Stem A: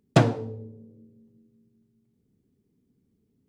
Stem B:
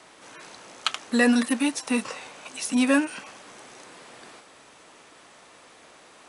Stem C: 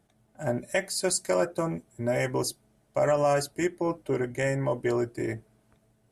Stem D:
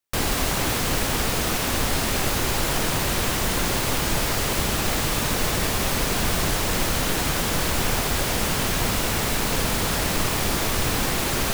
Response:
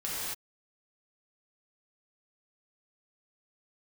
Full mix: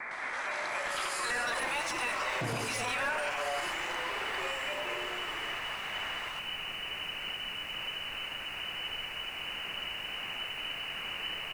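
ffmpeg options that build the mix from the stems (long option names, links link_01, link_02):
-filter_complex "[0:a]adelay=2250,volume=-12dB,asplit=2[link_01][link_02];[link_02]volume=-4dB[link_03];[1:a]highpass=frequency=730:width=0.5412,highpass=frequency=730:width=1.3066,bandreject=frequency=2900:width=29,asplit=2[link_04][link_05];[link_05]highpass=frequency=720:poles=1,volume=25dB,asoftclip=type=tanh:threshold=-8.5dB[link_06];[link_04][link_06]amix=inputs=2:normalize=0,lowpass=frequency=1200:poles=1,volume=-6dB,volume=0dB,asplit=3[link_07][link_08][link_09];[link_08]volume=-19dB[link_10];[link_09]volume=-5.5dB[link_11];[2:a]highpass=620,volume=-9dB,asplit=2[link_12][link_13];[link_13]volume=-4dB[link_14];[3:a]adelay=1050,volume=-13.5dB,asplit=2[link_15][link_16];[link_16]volume=-23dB[link_17];[link_07][link_12][link_15]amix=inputs=3:normalize=0,lowpass=frequency=2600:width_type=q:width=0.5098,lowpass=frequency=2600:width_type=q:width=0.6013,lowpass=frequency=2600:width_type=q:width=0.9,lowpass=frequency=2600:width_type=q:width=2.563,afreqshift=-3000,alimiter=level_in=3.5dB:limit=-24dB:level=0:latency=1:release=444,volume=-3.5dB,volume=0dB[link_18];[4:a]atrim=start_sample=2205[link_19];[link_10][link_14][link_17]amix=inputs=3:normalize=0[link_20];[link_20][link_19]afir=irnorm=-1:irlink=0[link_21];[link_03][link_11]amix=inputs=2:normalize=0,aecho=0:1:111:1[link_22];[link_01][link_18][link_21][link_22]amix=inputs=4:normalize=0,alimiter=level_in=0.5dB:limit=-24dB:level=0:latency=1:release=28,volume=-0.5dB"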